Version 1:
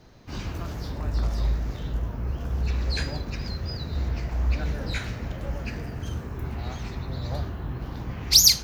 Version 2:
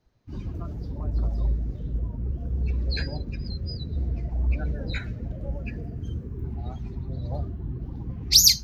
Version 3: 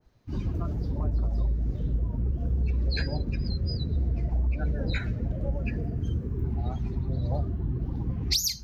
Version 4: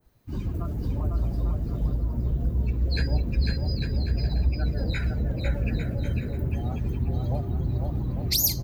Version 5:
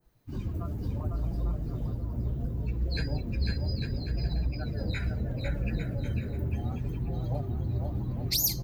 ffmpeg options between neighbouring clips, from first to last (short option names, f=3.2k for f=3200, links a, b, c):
-af "afftdn=nr=19:nf=-33"
-af "acompressor=threshold=-26dB:ratio=16,adynamicequalizer=threshold=0.00224:dfrequency=2200:dqfactor=0.7:tfrequency=2200:tqfactor=0.7:attack=5:release=100:ratio=0.375:range=1.5:mode=cutabove:tftype=highshelf,volume=4dB"
-af "aexciter=amount=2.7:drive=8.6:freq=7.8k,aecho=1:1:500|850|1095|1266|1387:0.631|0.398|0.251|0.158|0.1"
-af "flanger=delay=5.8:depth=4.4:regen=-38:speed=0.7:shape=sinusoidal"